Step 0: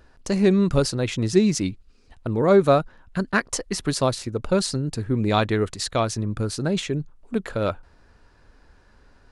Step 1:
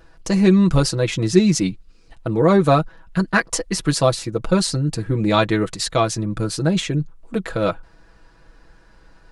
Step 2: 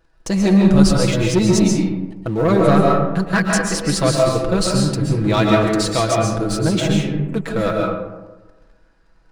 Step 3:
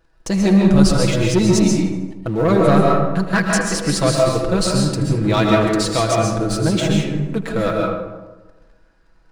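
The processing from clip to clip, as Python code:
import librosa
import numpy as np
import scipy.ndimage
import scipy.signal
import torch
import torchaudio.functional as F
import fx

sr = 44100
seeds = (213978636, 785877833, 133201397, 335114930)

y1 = x + 0.73 * np.pad(x, (int(6.1 * sr / 1000.0), 0))[:len(x)]
y1 = F.gain(torch.from_numpy(y1), 2.5).numpy()
y2 = fx.leveller(y1, sr, passes=2)
y2 = fx.rev_freeverb(y2, sr, rt60_s=1.2, hf_ratio=0.4, predelay_ms=95, drr_db=-1.0)
y2 = F.gain(torch.from_numpy(y2), -7.5).numpy()
y3 = fx.echo_feedback(y2, sr, ms=79, feedback_pct=54, wet_db=-16.0)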